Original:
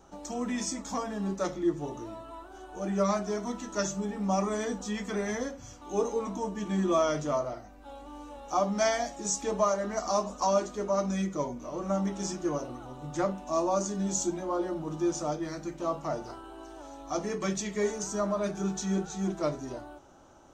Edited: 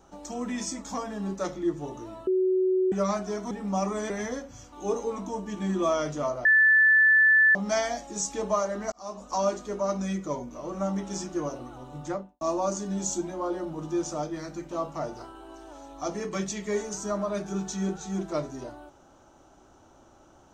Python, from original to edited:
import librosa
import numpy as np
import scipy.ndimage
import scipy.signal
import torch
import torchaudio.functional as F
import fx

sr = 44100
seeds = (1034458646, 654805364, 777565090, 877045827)

y = fx.studio_fade_out(x, sr, start_s=13.07, length_s=0.43)
y = fx.edit(y, sr, fx.bleep(start_s=2.27, length_s=0.65, hz=373.0, db=-20.5),
    fx.cut(start_s=3.51, length_s=0.56),
    fx.cut(start_s=4.66, length_s=0.53),
    fx.bleep(start_s=7.54, length_s=1.1, hz=1750.0, db=-15.5),
    fx.fade_in_span(start_s=10.01, length_s=0.51), tone=tone)